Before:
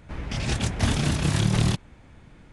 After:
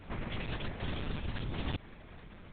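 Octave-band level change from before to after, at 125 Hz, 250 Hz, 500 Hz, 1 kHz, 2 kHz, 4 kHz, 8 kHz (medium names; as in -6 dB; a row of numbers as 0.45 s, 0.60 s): -16.0 dB, -14.5 dB, -10.0 dB, -11.0 dB, -11.0 dB, -13.5 dB, under -40 dB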